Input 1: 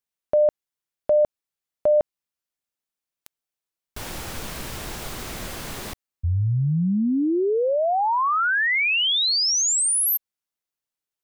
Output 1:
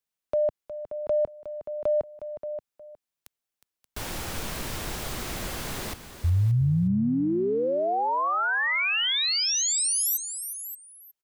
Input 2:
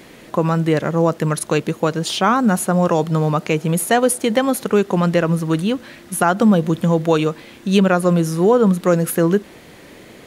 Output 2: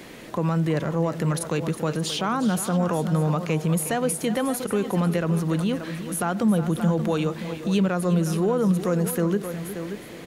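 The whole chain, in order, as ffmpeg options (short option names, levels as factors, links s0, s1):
-filter_complex "[0:a]asplit=2[s0][s1];[s1]aecho=0:1:579:0.158[s2];[s0][s2]amix=inputs=2:normalize=0,acrossover=split=130[s3][s4];[s4]acompressor=threshold=0.0501:ratio=2:attack=0.15:release=72:knee=2.83:detection=peak[s5];[s3][s5]amix=inputs=2:normalize=0,asplit=2[s6][s7];[s7]aecho=0:1:362:0.237[s8];[s6][s8]amix=inputs=2:normalize=0"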